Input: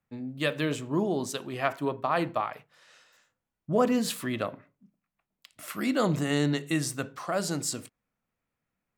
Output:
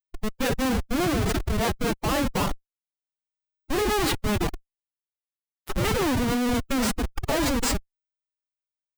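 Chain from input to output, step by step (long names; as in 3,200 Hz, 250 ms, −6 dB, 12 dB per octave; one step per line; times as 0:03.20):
comparator with hysteresis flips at −31 dBFS
phase-vocoder pitch shift with formants kept +9 semitones
level +8.5 dB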